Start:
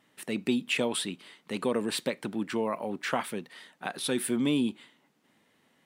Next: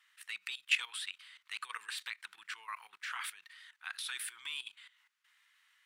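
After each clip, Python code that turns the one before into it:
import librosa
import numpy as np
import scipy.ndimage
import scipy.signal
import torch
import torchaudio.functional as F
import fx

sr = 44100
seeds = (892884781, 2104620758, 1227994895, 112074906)

y = scipy.signal.sosfilt(scipy.signal.cheby2(4, 40, 640.0, 'highpass', fs=sr, output='sos'), x)
y = fx.high_shelf(y, sr, hz=6000.0, db=-5.5)
y = fx.level_steps(y, sr, step_db=15)
y = y * 10.0 ** (4.5 / 20.0)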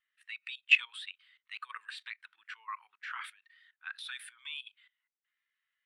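y = fx.high_shelf(x, sr, hz=8500.0, db=-9.0)
y = fx.spectral_expand(y, sr, expansion=1.5)
y = y * 10.0 ** (7.0 / 20.0)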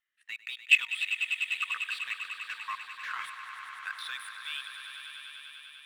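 y = fx.leveller(x, sr, passes=1)
y = fx.echo_swell(y, sr, ms=99, loudest=5, wet_db=-11.5)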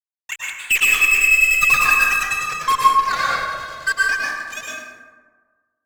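y = fx.sine_speech(x, sr)
y = fx.fuzz(y, sr, gain_db=34.0, gate_db=-39.0)
y = fx.rev_plate(y, sr, seeds[0], rt60_s=1.5, hf_ratio=0.4, predelay_ms=95, drr_db=-5.0)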